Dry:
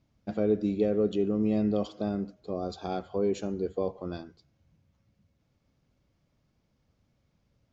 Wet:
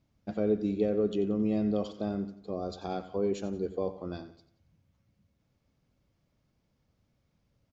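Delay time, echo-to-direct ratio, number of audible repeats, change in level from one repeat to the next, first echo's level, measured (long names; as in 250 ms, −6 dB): 90 ms, −13.5 dB, 3, −7.5 dB, −14.5 dB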